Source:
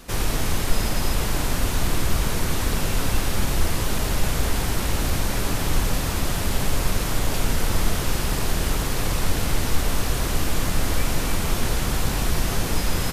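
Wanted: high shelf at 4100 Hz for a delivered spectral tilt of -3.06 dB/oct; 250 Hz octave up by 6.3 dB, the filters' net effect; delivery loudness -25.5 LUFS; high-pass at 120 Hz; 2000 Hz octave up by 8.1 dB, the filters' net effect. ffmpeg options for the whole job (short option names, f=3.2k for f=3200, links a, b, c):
-af "highpass=120,equalizer=f=250:t=o:g=8.5,equalizer=f=2k:t=o:g=8.5,highshelf=f=4.1k:g=6.5,volume=-4.5dB"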